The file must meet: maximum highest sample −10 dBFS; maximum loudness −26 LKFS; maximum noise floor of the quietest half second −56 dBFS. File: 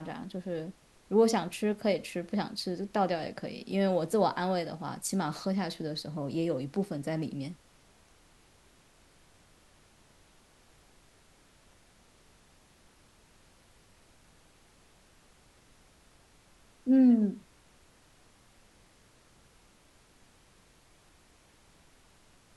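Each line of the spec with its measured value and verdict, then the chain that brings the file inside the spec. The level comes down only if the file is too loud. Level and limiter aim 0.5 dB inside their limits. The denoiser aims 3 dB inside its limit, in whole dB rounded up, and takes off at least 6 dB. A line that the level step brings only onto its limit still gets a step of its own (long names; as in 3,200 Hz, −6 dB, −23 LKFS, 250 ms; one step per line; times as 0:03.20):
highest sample −13.5 dBFS: in spec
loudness −30.5 LKFS: in spec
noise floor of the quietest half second −62 dBFS: in spec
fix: no processing needed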